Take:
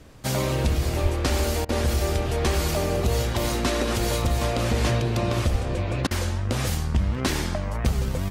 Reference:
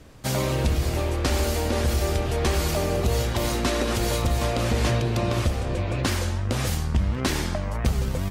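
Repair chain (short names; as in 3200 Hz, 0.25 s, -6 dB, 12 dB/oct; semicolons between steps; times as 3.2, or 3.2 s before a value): 1.02–1.14 HPF 140 Hz 24 dB/oct; 5.51–5.63 HPF 140 Hz 24 dB/oct; interpolate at 1.65/6.07, 38 ms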